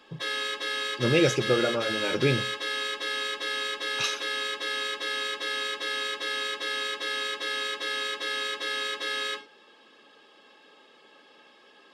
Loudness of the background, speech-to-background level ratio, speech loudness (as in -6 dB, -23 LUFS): -29.5 LUFS, 2.5 dB, -27.0 LUFS